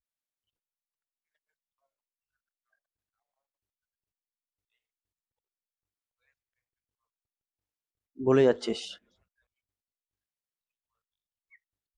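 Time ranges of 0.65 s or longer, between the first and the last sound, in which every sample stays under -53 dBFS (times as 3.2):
8.97–11.53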